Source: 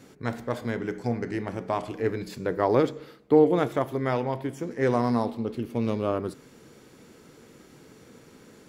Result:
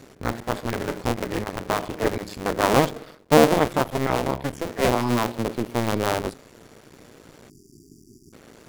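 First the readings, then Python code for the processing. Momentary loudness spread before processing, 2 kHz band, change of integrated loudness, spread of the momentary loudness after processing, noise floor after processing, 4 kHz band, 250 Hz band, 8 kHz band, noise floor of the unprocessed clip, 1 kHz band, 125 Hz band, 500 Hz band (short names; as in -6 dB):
10 LU, +8.0 dB, +3.5 dB, 10 LU, -52 dBFS, +13.0 dB, +2.0 dB, n/a, -54 dBFS, +6.0 dB, +3.0 dB, +2.0 dB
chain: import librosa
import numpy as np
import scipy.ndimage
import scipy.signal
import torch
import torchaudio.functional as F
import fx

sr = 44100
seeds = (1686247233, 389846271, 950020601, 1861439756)

y = fx.cycle_switch(x, sr, every=2, mode='muted')
y = fx.spec_erase(y, sr, start_s=7.49, length_s=0.84, low_hz=410.0, high_hz=4600.0)
y = y * 10.0 ** (6.0 / 20.0)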